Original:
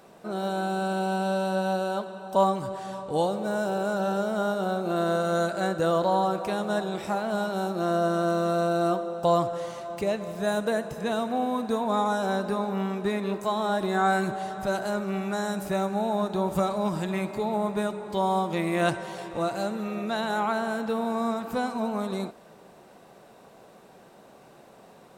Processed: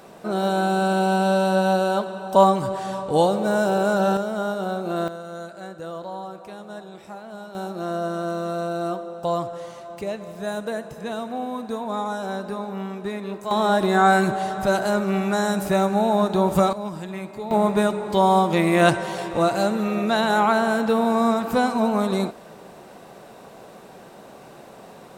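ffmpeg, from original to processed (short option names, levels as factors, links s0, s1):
-af "asetnsamples=n=441:p=0,asendcmd='4.17 volume volume 1dB;5.08 volume volume -10dB;7.55 volume volume -2dB;13.51 volume volume 7dB;16.73 volume volume -3.5dB;17.51 volume volume 8dB',volume=2.24"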